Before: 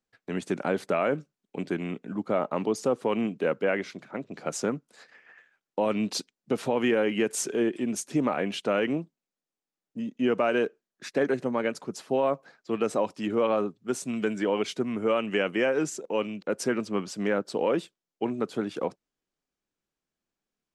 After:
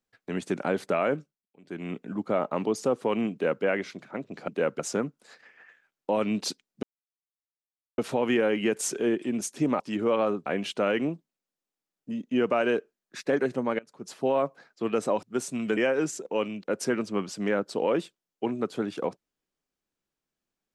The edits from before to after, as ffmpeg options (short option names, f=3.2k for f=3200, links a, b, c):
-filter_complex "[0:a]asplit=11[a][b][c][d][e][f][g][h][i][j][k];[a]atrim=end=1.44,asetpts=PTS-STARTPTS,afade=t=out:st=1.12:d=0.32:silence=0.0707946[l];[b]atrim=start=1.44:end=1.62,asetpts=PTS-STARTPTS,volume=-23dB[m];[c]atrim=start=1.62:end=4.482,asetpts=PTS-STARTPTS,afade=t=in:d=0.32:silence=0.0707946[n];[d]atrim=start=3.318:end=3.632[o];[e]atrim=start=4.478:end=6.52,asetpts=PTS-STARTPTS,afade=t=out:st=2.038:d=0.004:c=hsin,apad=pad_dur=1.15[p];[f]atrim=start=6.52:end=8.342,asetpts=PTS-STARTPTS,afade=t=in:d=0.004:c=hsin[q];[g]atrim=start=13.108:end=13.772[r];[h]atrim=start=8.338:end=11.67,asetpts=PTS-STARTPTS,afade=t=out:st=3.328:d=0.004:c=hsin:silence=0.0749894[s];[i]atrim=start=11.67:end=13.112,asetpts=PTS-STARTPTS,afade=t=in:d=0.34:c=qua:silence=0.0749894[t];[j]atrim=start=13.768:end=14.312[u];[k]atrim=start=15.558[v];[l][m][n]concat=n=3:v=0:a=1[w];[w][o]acrossfade=d=0.004:c1=hsin:c2=hsin[x];[p][q]concat=n=2:v=0:a=1[y];[x][y]acrossfade=d=0.004:c1=hsin:c2=hsin[z];[z][r]acrossfade=d=0.004:c1=hsin:c2=hsin[aa];[s][t]concat=n=2:v=0:a=1[ab];[aa][ab]acrossfade=d=0.004:c1=hsin:c2=hsin[ac];[ac][u]acrossfade=d=0.004:c1=hsin:c2=hsin[ad];[ad][v]acrossfade=d=0.004:c1=hsin:c2=hsin"